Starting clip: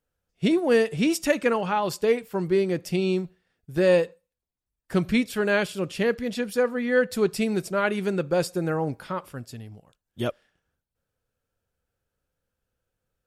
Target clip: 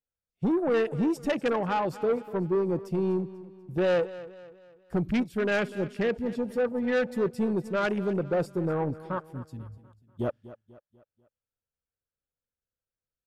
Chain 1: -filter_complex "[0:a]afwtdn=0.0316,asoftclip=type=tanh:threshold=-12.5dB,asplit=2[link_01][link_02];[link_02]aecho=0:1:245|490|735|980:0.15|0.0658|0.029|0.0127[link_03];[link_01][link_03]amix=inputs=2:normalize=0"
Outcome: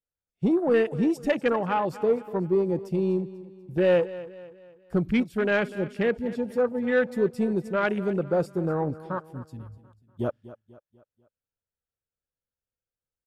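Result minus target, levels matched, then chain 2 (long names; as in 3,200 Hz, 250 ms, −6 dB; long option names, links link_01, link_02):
soft clipping: distortion −10 dB
-filter_complex "[0:a]afwtdn=0.0316,asoftclip=type=tanh:threshold=-20.5dB,asplit=2[link_01][link_02];[link_02]aecho=0:1:245|490|735|980:0.15|0.0658|0.029|0.0127[link_03];[link_01][link_03]amix=inputs=2:normalize=0"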